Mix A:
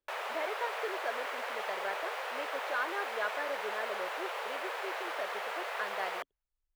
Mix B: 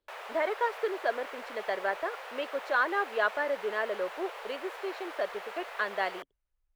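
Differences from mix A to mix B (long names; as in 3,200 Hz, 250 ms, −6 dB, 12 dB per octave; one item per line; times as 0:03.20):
speech +7.5 dB
background −5.0 dB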